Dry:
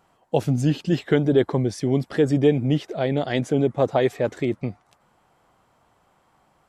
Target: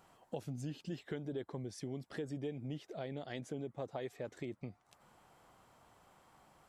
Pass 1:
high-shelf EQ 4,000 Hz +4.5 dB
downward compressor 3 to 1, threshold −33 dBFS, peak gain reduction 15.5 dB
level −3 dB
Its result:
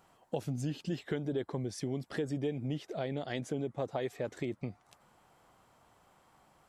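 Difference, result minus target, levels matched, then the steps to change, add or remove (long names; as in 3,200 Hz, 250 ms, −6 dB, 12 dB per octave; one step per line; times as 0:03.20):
downward compressor: peak gain reduction −6.5 dB
change: downward compressor 3 to 1, threshold −43 dBFS, peak gain reduction 22 dB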